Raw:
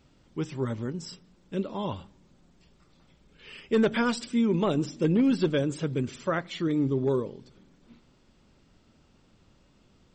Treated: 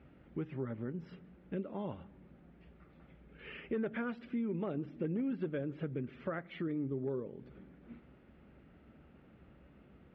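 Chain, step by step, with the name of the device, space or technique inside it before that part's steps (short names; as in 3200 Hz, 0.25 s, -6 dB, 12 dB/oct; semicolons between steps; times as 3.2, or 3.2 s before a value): bass amplifier (compressor 3:1, threshold -42 dBFS, peak gain reduction 16.5 dB; speaker cabinet 63–2300 Hz, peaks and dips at 66 Hz +9 dB, 96 Hz -8 dB, 1000 Hz -8 dB); gain +3 dB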